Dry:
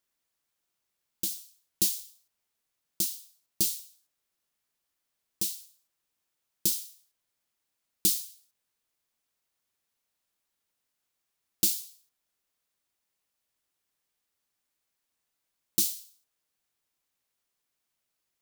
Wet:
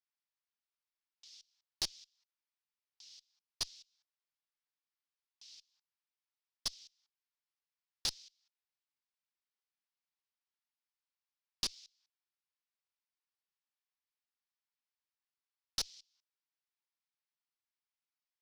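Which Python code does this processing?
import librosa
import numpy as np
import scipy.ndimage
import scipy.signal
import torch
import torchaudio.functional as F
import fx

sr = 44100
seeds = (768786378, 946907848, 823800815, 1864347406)

y = fx.level_steps(x, sr, step_db=24)
y = scipy.signal.sosfilt(scipy.signal.ellip(3, 1.0, 40, [840.0, 5400.0], 'bandpass', fs=sr, output='sos'), y)
y = fx.cheby_harmonics(y, sr, harmonics=(6,), levels_db=(-19,), full_scale_db=-20.0)
y = F.gain(torch.from_numpy(y), 1.5).numpy()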